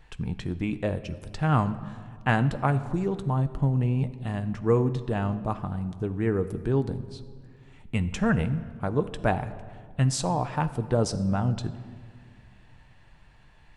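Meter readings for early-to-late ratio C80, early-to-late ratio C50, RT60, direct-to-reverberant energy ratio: 15.5 dB, 14.0 dB, 1.9 s, 9.5 dB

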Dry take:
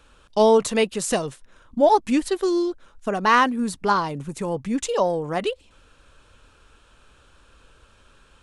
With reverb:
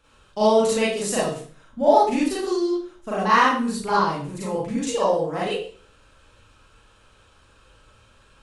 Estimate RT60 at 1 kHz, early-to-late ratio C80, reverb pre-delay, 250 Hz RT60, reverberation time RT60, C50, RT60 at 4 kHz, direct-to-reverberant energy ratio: 0.45 s, 6.5 dB, 33 ms, 0.55 s, 0.45 s, 0.5 dB, 0.40 s, −8.5 dB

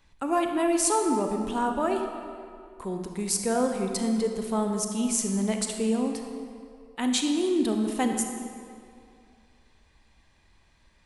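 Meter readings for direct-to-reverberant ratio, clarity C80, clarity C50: 4.0 dB, 6.0 dB, 4.5 dB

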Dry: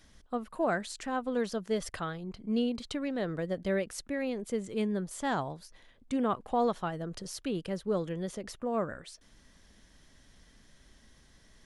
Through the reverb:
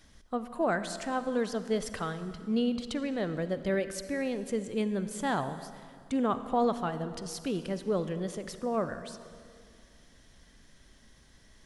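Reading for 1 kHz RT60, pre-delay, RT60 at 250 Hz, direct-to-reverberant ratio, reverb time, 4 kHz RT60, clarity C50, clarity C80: 2.2 s, 39 ms, 2.6 s, 11.0 dB, 2.3 s, 2.0 s, 11.5 dB, 12.0 dB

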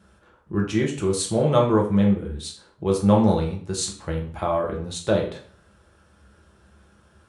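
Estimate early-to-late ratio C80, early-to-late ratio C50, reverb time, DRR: 12.5 dB, 7.5 dB, 0.50 s, −1.0 dB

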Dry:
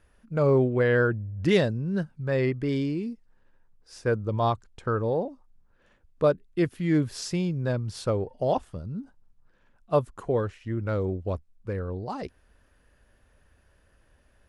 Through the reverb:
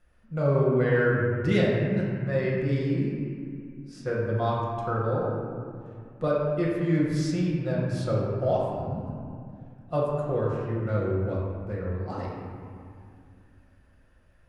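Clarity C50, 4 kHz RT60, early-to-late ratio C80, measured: −1.0 dB, 1.5 s, 1.0 dB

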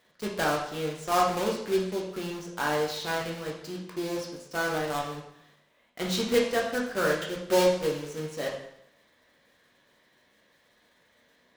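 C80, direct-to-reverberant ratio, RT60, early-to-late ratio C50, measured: 7.5 dB, −2.5 dB, 0.75 s, 4.0 dB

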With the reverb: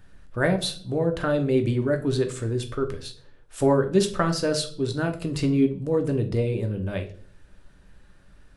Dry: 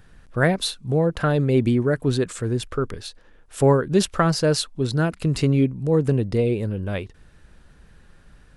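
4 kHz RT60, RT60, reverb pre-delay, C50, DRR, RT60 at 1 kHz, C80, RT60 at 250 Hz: 0.40 s, 0.50 s, 3 ms, 13.0 dB, 5.0 dB, 0.40 s, 17.5 dB, 0.65 s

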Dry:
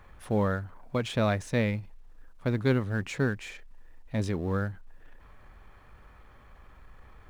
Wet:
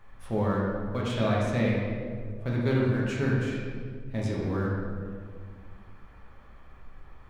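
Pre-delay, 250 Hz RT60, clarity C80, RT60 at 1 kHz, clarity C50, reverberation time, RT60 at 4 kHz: 5 ms, 2.7 s, 1.5 dB, 1.7 s, −1.0 dB, 2.0 s, 1.1 s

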